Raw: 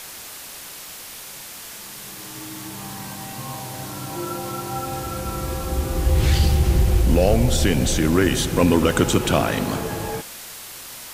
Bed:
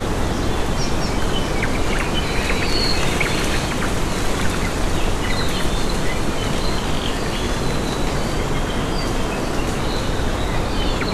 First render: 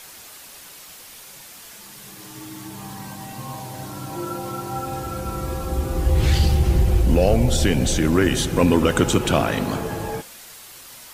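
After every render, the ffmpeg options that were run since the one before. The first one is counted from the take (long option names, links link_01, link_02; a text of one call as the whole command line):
ffmpeg -i in.wav -af "afftdn=noise_reduction=6:noise_floor=-38" out.wav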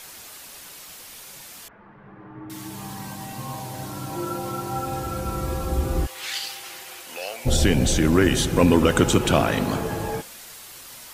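ffmpeg -i in.wav -filter_complex "[0:a]asettb=1/sr,asplit=3[link_01][link_02][link_03];[link_01]atrim=end=1.684[link_04];[link_02]atrim=start=1.68:end=2.5,asetpts=PTS-STARTPTS,afade=type=in:duration=0.004:curve=qsin,afade=type=out:start_time=0.816:duration=0.004:curve=qsin,lowpass=frequency=1600:width=0.5412,lowpass=frequency=1600:width=1.3066[link_05];[link_03]atrim=start=2.496[link_06];[link_04][link_05]acrossfade=duration=0.004:curve1=hsin:curve2=qsin[link_07];[link_07][link_06]acrossfade=duration=0.004:curve1=qsin:curve2=hsin,asplit=3[link_08][link_09][link_10];[link_08]afade=type=out:start_time=6.05:duration=0.02[link_11];[link_09]highpass=1400,afade=type=in:start_time=6.05:duration=0.02,afade=type=out:start_time=7.45:duration=0.02[link_12];[link_10]afade=type=in:start_time=7.45:duration=0.02[link_13];[link_11][link_12][link_13]amix=inputs=3:normalize=0" out.wav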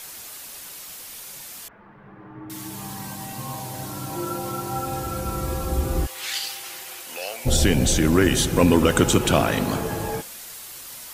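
ffmpeg -i in.wav -af "highshelf=frequency=6700:gain=5.5" out.wav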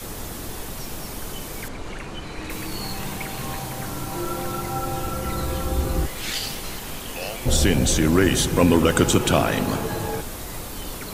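ffmpeg -i in.wav -i bed.wav -filter_complex "[1:a]volume=-14dB[link_01];[0:a][link_01]amix=inputs=2:normalize=0" out.wav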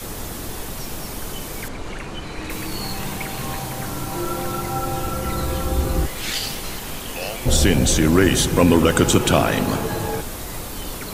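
ffmpeg -i in.wav -af "volume=2.5dB,alimiter=limit=-3dB:level=0:latency=1" out.wav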